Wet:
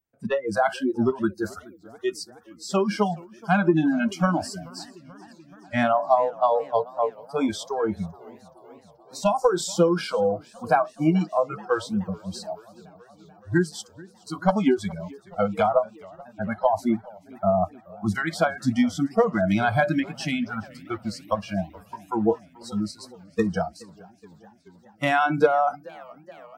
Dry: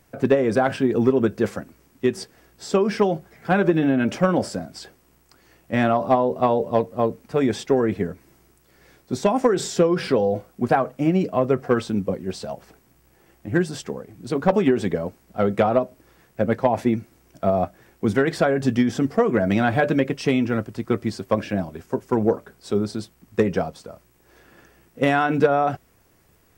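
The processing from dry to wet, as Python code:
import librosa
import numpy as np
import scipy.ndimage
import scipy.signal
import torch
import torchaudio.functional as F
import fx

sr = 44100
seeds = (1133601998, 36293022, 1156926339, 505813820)

y = fx.noise_reduce_blind(x, sr, reduce_db=30)
y = fx.echo_warbled(y, sr, ms=428, feedback_pct=71, rate_hz=2.8, cents=192, wet_db=-23)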